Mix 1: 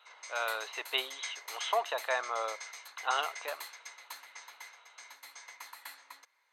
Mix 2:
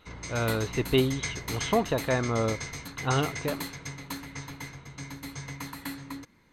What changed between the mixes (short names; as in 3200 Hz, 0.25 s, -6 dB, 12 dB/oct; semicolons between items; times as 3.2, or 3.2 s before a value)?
background +6.5 dB; master: remove inverse Chebyshev high-pass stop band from 150 Hz, stop band 70 dB